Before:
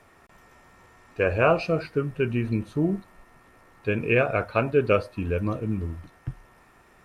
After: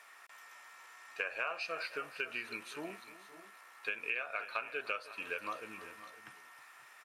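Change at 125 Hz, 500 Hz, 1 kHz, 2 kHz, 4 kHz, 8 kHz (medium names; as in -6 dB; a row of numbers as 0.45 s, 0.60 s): -38.5 dB, -21.5 dB, -12.0 dB, -7.0 dB, -4.0 dB, no reading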